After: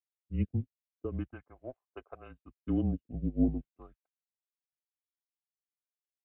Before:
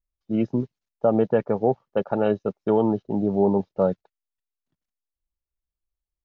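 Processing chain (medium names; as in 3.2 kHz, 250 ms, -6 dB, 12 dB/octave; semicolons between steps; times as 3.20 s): phase shifter stages 2, 0.4 Hz, lowest notch 340–1200 Hz; mistuned SSB -140 Hz 230–3000 Hz; upward expansion 2.5:1, over -36 dBFS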